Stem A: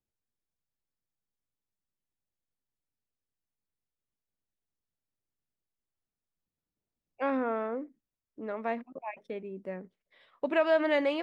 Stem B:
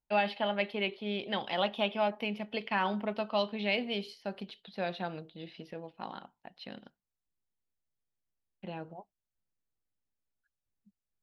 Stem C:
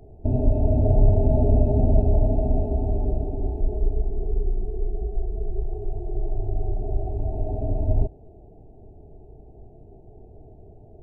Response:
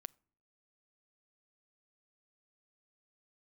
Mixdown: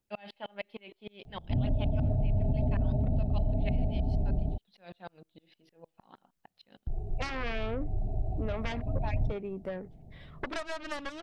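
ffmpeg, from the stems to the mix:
-filter_complex "[0:a]aeval=exprs='0.178*(cos(1*acos(clip(val(0)/0.178,-1,1)))-cos(1*PI/2))+0.0501*(cos(4*acos(clip(val(0)/0.178,-1,1)))-cos(4*PI/2))+0.0631*(cos(7*acos(clip(val(0)/0.178,-1,1)))-cos(7*PI/2))':c=same,volume=1.26,asplit=2[s0][s1];[1:a]aeval=exprs='val(0)*pow(10,-36*if(lt(mod(-6.5*n/s,1),2*abs(-6.5)/1000),1-mod(-6.5*n/s,1)/(2*abs(-6.5)/1000),(mod(-6.5*n/s,1)-2*abs(-6.5)/1000)/(1-2*abs(-6.5)/1000))/20)':c=same,volume=0.75[s2];[2:a]equalizer=f=160:t=o:w=0.67:g=11,equalizer=f=400:t=o:w=0.67:g=-10,equalizer=f=4000:t=o:w=0.67:g=8,adelay=1250,volume=0.531,asplit=3[s3][s4][s5];[s3]atrim=end=4.58,asetpts=PTS-STARTPTS,afade=t=out:st=4.576:d=0.004:c=hsin[s6];[s4]atrim=start=4.58:end=6.87,asetpts=PTS-STARTPTS,volume=0[s7];[s5]atrim=start=6.87,asetpts=PTS-STARTPTS,afade=t=in:d=0.004:c=hsin[s8];[s6][s7][s8]concat=n=3:v=0:a=1[s9];[s1]apad=whole_len=541139[s10];[s9][s10]sidechaincompress=threshold=0.0178:ratio=8:attack=41:release=343[s11];[s0][s2]amix=inputs=2:normalize=0,aphaser=in_gain=1:out_gain=1:delay=3.8:decay=0.2:speed=0.64:type=triangular,acompressor=threshold=0.0251:ratio=12,volume=1[s12];[s11][s12]amix=inputs=2:normalize=0,alimiter=limit=0.0944:level=0:latency=1:release=61"

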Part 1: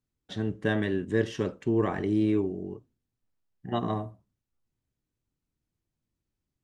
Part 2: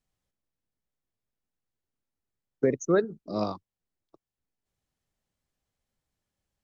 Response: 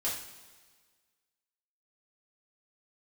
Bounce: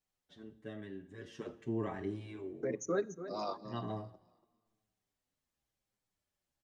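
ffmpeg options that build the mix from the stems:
-filter_complex "[0:a]volume=0.335,afade=t=in:st=1.12:d=0.4:silence=0.354813,asplit=2[s0][s1];[s1]volume=0.211[s2];[1:a]lowshelf=f=170:g=-11.5,alimiter=limit=0.0891:level=0:latency=1:release=60,volume=0.891,asplit=3[s3][s4][s5];[s4]volume=0.0668[s6];[s5]volume=0.237[s7];[2:a]atrim=start_sample=2205[s8];[s2][s6]amix=inputs=2:normalize=0[s9];[s9][s8]afir=irnorm=-1:irlink=0[s10];[s7]aecho=0:1:287|574|861|1148:1|0.23|0.0529|0.0122[s11];[s0][s3][s10][s11]amix=inputs=4:normalize=0,asplit=2[s12][s13];[s13]adelay=7.5,afreqshift=-0.99[s14];[s12][s14]amix=inputs=2:normalize=1"

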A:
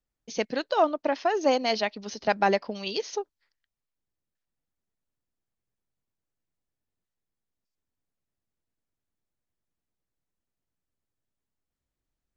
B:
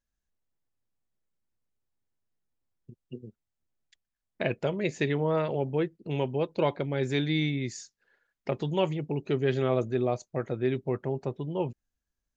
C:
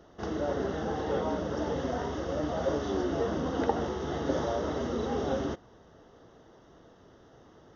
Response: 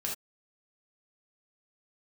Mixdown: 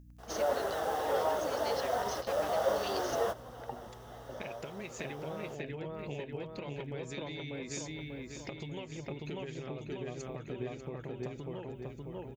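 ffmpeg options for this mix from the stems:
-filter_complex "[0:a]aeval=exprs='val(0)+0.00316*(sin(2*PI*50*n/s)+sin(2*PI*2*50*n/s)/2+sin(2*PI*3*50*n/s)/3+sin(2*PI*4*50*n/s)/4+sin(2*PI*5*50*n/s)/5)':c=same,volume=0.299,asplit=2[s0][s1];[1:a]equalizer=f=2500:t=o:w=0.42:g=4.5,acompressor=threshold=0.0316:ratio=6,aeval=exprs='val(0)+0.00316*(sin(2*PI*60*n/s)+sin(2*PI*2*60*n/s)/2+sin(2*PI*3*60*n/s)/3+sin(2*PI*4*60*n/s)/4+sin(2*PI*5*60*n/s)/5)':c=same,volume=0.631,asplit=2[s2][s3];[s3]volume=0.531[s4];[2:a]lowshelf=f=400:t=q:w=1.5:g=-13,bandreject=f=107.9:t=h:w=4,bandreject=f=215.8:t=h:w=4,bandreject=f=323.7:t=h:w=4,bandreject=f=431.6:t=h:w=4,bandreject=f=539.5:t=h:w=4,acrusher=bits=7:mix=0:aa=0.000001,volume=1.06[s5];[s1]apad=whole_len=342209[s6];[s5][s6]sidechaingate=range=0.178:threshold=0.00282:ratio=16:detection=peak[s7];[s0][s2]amix=inputs=2:normalize=0,aemphasis=mode=production:type=75kf,acompressor=threshold=0.01:ratio=6,volume=1[s8];[s4]aecho=0:1:592|1184|1776|2368|2960|3552|4144|4736:1|0.56|0.314|0.176|0.0983|0.0551|0.0308|0.0173[s9];[s7][s8][s9]amix=inputs=3:normalize=0"

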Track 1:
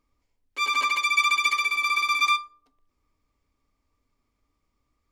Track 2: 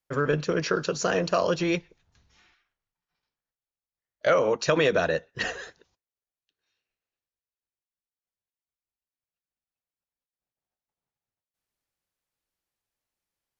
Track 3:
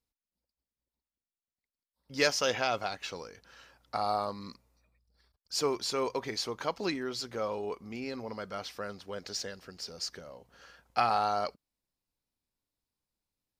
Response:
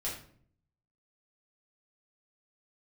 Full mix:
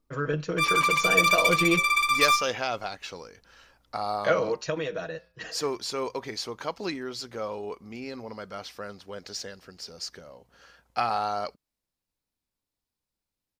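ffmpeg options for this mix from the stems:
-filter_complex "[0:a]adynamicsmooth=sensitivity=4.5:basefreq=940,volume=0.891,asplit=2[s0][s1];[s1]volume=0.251[s2];[1:a]aecho=1:1:6.3:0.59,dynaudnorm=f=190:g=17:m=2.37,flanger=delay=5.7:depth=3.1:regen=-89:speed=0.46:shape=sinusoidal,volume=0.841,afade=t=out:st=4.07:d=0.71:silence=0.281838[s3];[2:a]volume=1.06[s4];[3:a]atrim=start_sample=2205[s5];[s2][s5]afir=irnorm=-1:irlink=0[s6];[s0][s3][s4][s6]amix=inputs=4:normalize=0"

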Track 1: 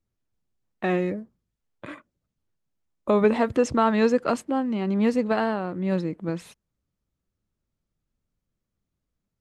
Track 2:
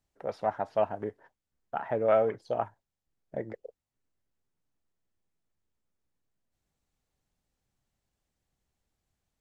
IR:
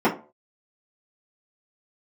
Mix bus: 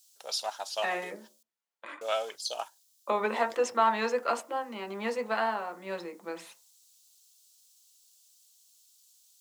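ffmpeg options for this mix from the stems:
-filter_complex "[0:a]volume=0.75,asplit=2[s0][s1];[s1]volume=0.0944[s2];[1:a]aexciter=amount=12.1:drive=8.5:freq=3100,volume=0.891,asplit=3[s3][s4][s5];[s3]atrim=end=1.43,asetpts=PTS-STARTPTS,afade=t=out:st=1.426:d=0.004:c=hsin[s6];[s4]atrim=start=1.43:end=2.01,asetpts=PTS-STARTPTS,volume=0[s7];[s5]atrim=start=2.01,asetpts=PTS-STARTPTS,afade=t=in:d=0.004:c=hsin[s8];[s6][s7][s8]concat=n=3:v=0:a=1[s9];[2:a]atrim=start_sample=2205[s10];[s2][s10]afir=irnorm=-1:irlink=0[s11];[s0][s9][s11]amix=inputs=3:normalize=0,highpass=870"

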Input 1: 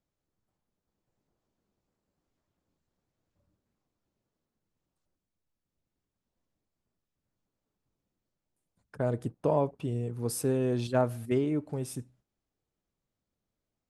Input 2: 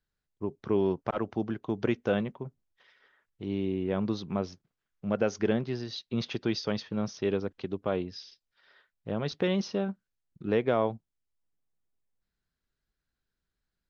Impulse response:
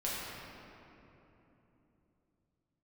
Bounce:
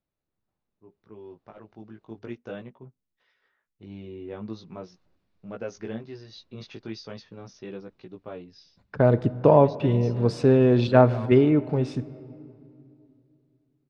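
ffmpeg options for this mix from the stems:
-filter_complex "[0:a]lowpass=f=4400:w=0.5412,lowpass=f=4400:w=1.3066,volume=0.794,asplit=3[s0][s1][s2];[s0]atrim=end=2.19,asetpts=PTS-STARTPTS,afade=t=out:st=2.186:d=0.004:c=hsin[s3];[s1]atrim=start=2.19:end=4.64,asetpts=PTS-STARTPTS,volume=0[s4];[s2]atrim=start=4.64,asetpts=PTS-STARTPTS,afade=t=in:d=0.004:c=hsin[s5];[s3][s4][s5]concat=n=3:v=0:a=1,asplit=2[s6][s7];[s7]volume=0.0841[s8];[1:a]flanger=delay=16:depth=3.1:speed=0.41,adelay=400,volume=0.112[s9];[2:a]atrim=start_sample=2205[s10];[s8][s10]afir=irnorm=-1:irlink=0[s11];[s6][s9][s11]amix=inputs=3:normalize=0,bandreject=f=3200:w=16,dynaudnorm=f=370:g=11:m=5.31"

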